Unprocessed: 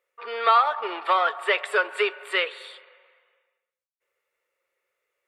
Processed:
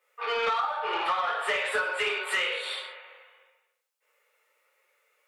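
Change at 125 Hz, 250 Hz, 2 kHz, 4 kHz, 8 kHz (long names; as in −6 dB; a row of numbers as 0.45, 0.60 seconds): can't be measured, −6.0 dB, −2.0 dB, −0.5 dB, +5.0 dB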